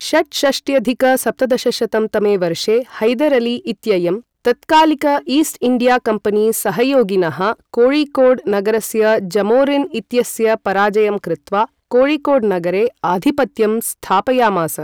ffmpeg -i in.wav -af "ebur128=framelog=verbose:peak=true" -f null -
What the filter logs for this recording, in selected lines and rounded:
Integrated loudness:
  I:         -15.6 LUFS
  Threshold: -25.6 LUFS
Loudness range:
  LRA:         1.5 LU
  Threshold: -35.5 LUFS
  LRA low:   -16.3 LUFS
  LRA high:  -14.8 LUFS
True peak:
  Peak:       -4.6 dBFS